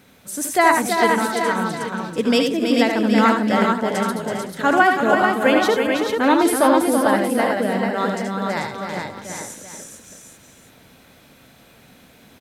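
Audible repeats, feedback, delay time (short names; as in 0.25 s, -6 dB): 10, no steady repeat, 75 ms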